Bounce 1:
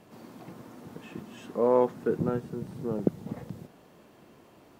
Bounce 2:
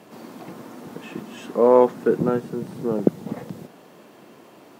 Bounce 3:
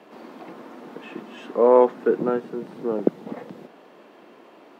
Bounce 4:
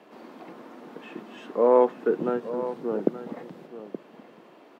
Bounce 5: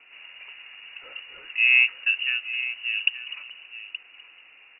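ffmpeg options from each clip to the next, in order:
-af "highpass=180,volume=8.5dB"
-filter_complex "[0:a]acrossover=split=210 4100:gain=0.0794 1 0.2[a][b][c];[a][b][c]amix=inputs=3:normalize=0"
-af "aecho=1:1:874:0.237,volume=-3.5dB"
-af "lowpass=f=2.6k:t=q:w=0.5098,lowpass=f=2.6k:t=q:w=0.6013,lowpass=f=2.6k:t=q:w=0.9,lowpass=f=2.6k:t=q:w=2.563,afreqshift=-3100"

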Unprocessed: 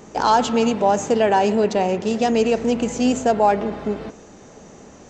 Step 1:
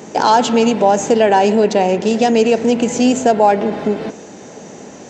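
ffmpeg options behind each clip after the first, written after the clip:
-filter_complex "[0:a]highpass=150,equalizer=f=1.2k:w=5.1:g=-7,asplit=2[a][b];[b]acompressor=threshold=-24dB:ratio=6,volume=1.5dB[c];[a][c]amix=inputs=2:normalize=0,volume=2.5dB"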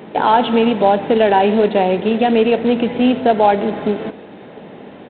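-af "flanger=delay=5.3:depth=4.2:regen=-84:speed=1.1:shape=sinusoidal,aresample=8000,acrusher=bits=5:mode=log:mix=0:aa=0.000001,aresample=44100,volume=3.5dB"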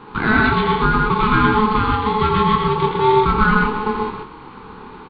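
-filter_complex "[0:a]aeval=exprs='val(0)*sin(2*PI*640*n/s)':c=same,asplit=2[a][b];[b]adelay=28,volume=-7.5dB[c];[a][c]amix=inputs=2:normalize=0,asplit=2[d][e];[e]aecho=0:1:84.55|128.3:0.501|0.794[f];[d][f]amix=inputs=2:normalize=0,volume=-2dB"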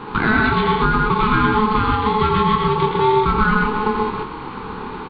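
-af "acompressor=threshold=-27dB:ratio=2,volume=7.5dB"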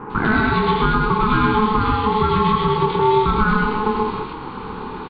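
-filter_complex "[0:a]acrossover=split=2000[a][b];[b]adelay=100[c];[a][c]amix=inputs=2:normalize=0"

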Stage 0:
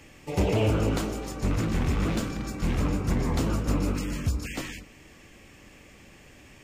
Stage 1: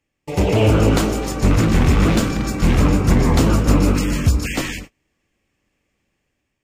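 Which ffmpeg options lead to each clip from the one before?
-af "agate=range=-31dB:threshold=-44dB:ratio=16:detection=peak,dynaudnorm=f=250:g=5:m=6dB,volume=5.5dB"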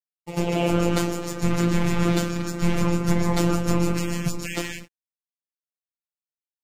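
-af "aeval=exprs='sgn(val(0))*max(abs(val(0))-0.00422,0)':c=same,afftfilt=real='hypot(re,im)*cos(PI*b)':imag='0':win_size=1024:overlap=0.75,volume=-2dB"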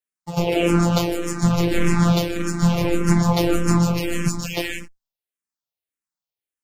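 -filter_complex "[0:a]asplit=2[a][b];[b]afreqshift=-1.7[c];[a][c]amix=inputs=2:normalize=1,volume=6.5dB"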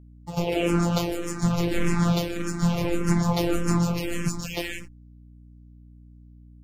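-af "aeval=exprs='val(0)+0.00794*(sin(2*PI*60*n/s)+sin(2*PI*2*60*n/s)/2+sin(2*PI*3*60*n/s)/3+sin(2*PI*4*60*n/s)/4+sin(2*PI*5*60*n/s)/5)':c=same,volume=-5dB"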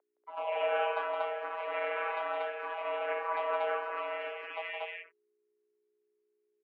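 -af "aecho=1:1:166.2|236.2:0.501|0.891,highpass=f=490:t=q:w=0.5412,highpass=f=490:t=q:w=1.307,lowpass=f=2.4k:t=q:w=0.5176,lowpass=f=2.4k:t=q:w=0.7071,lowpass=f=2.4k:t=q:w=1.932,afreqshift=120,volume=-4dB"

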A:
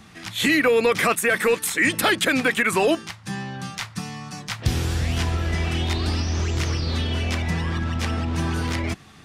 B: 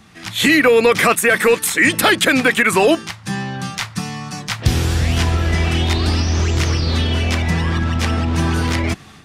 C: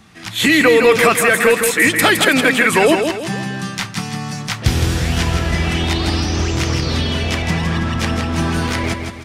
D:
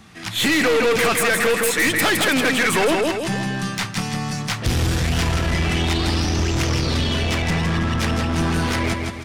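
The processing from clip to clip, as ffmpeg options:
-af "dynaudnorm=f=150:g=3:m=7dB"
-af "aecho=1:1:163|326|489|652|815:0.501|0.21|0.0884|0.0371|0.0156"
-af "aeval=exprs='(tanh(6.31*val(0)+0.25)-tanh(0.25))/6.31':c=same,volume=1dB"

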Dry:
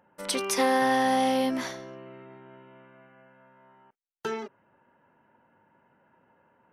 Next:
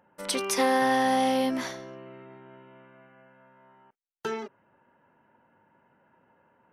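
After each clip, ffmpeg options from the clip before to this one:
-af anull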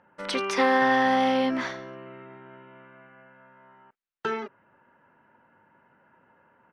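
-af "firequalizer=gain_entry='entry(790,0);entry(1300,5);entry(12000,-24)':delay=0.05:min_phase=1,volume=1.5dB"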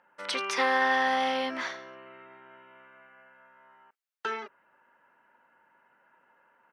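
-af "highpass=f=930:p=1"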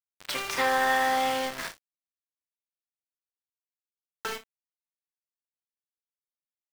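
-af "aeval=exprs='val(0)*gte(abs(val(0)),0.0299)':c=same,aecho=1:1:32|61:0.316|0.158"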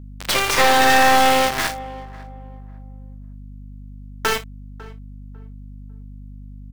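-filter_complex "[0:a]asplit=2[a][b];[b]adelay=549,lowpass=f=1.1k:p=1,volume=-17.5dB,asplit=2[c][d];[d]adelay=549,lowpass=f=1.1k:p=1,volume=0.31,asplit=2[e][f];[f]adelay=549,lowpass=f=1.1k:p=1,volume=0.31[g];[a][c][e][g]amix=inputs=4:normalize=0,aeval=exprs='val(0)+0.00355*(sin(2*PI*50*n/s)+sin(2*PI*2*50*n/s)/2+sin(2*PI*3*50*n/s)/3+sin(2*PI*4*50*n/s)/4+sin(2*PI*5*50*n/s)/5)':c=same,aeval=exprs='0.224*(cos(1*acos(clip(val(0)/0.224,-1,1)))-cos(1*PI/2))+0.0501*(cos(5*acos(clip(val(0)/0.224,-1,1)))-cos(5*PI/2))+0.0562*(cos(6*acos(clip(val(0)/0.224,-1,1)))-cos(6*PI/2))':c=same,volume=6.5dB"

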